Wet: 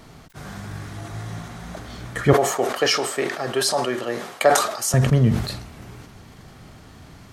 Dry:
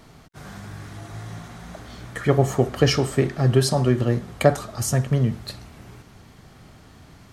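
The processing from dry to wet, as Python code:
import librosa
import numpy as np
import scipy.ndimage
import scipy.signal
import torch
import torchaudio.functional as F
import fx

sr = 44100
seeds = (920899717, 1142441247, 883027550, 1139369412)

y = fx.highpass(x, sr, hz=550.0, slope=12, at=(2.33, 4.94))
y = fx.sustainer(y, sr, db_per_s=69.0)
y = F.gain(torch.from_numpy(y), 3.0).numpy()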